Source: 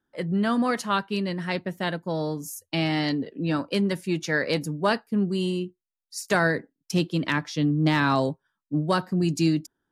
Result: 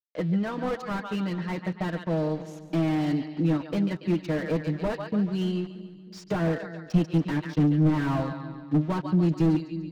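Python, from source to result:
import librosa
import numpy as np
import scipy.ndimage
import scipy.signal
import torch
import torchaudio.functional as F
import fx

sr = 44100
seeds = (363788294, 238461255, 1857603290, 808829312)

p1 = fx.high_shelf(x, sr, hz=5800.0, db=5.0)
p2 = p1 + 0.67 * np.pad(p1, (int(6.4 * sr / 1000.0), 0))[:len(p1)]
p3 = fx.transient(p2, sr, attack_db=4, sustain_db=-10)
p4 = np.where(np.abs(p3) >= 10.0 ** (-38.5 / 20.0), p3, 0.0)
p5 = fx.air_absorb(p4, sr, metres=180.0)
p6 = p5 + fx.echo_split(p5, sr, split_hz=360.0, low_ms=314, high_ms=142, feedback_pct=52, wet_db=-14, dry=0)
p7 = fx.slew_limit(p6, sr, full_power_hz=44.0)
y = F.gain(torch.from_numpy(p7), -2.5).numpy()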